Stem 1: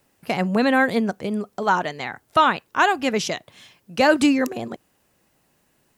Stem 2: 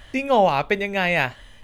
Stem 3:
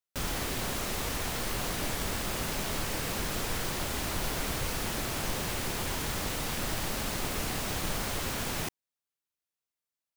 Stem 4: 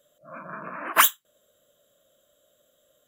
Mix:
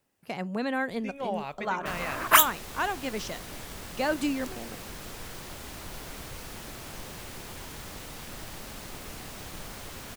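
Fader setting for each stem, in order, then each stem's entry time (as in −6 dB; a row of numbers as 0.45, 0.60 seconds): −11.5, −16.0, −8.5, −0.5 decibels; 0.00, 0.90, 1.70, 1.35 seconds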